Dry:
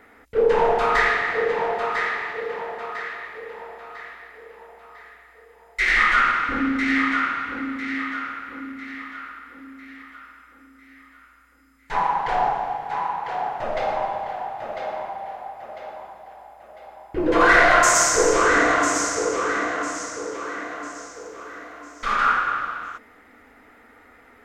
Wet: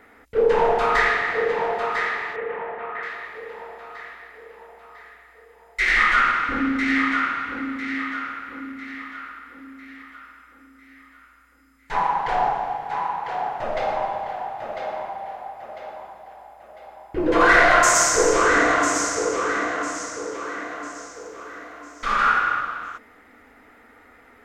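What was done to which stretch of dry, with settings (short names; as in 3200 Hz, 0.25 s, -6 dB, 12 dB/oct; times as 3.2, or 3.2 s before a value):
2.36–3.03 LPF 2700 Hz 24 dB/oct
21.97–22.61 flutter echo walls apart 11.2 m, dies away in 0.53 s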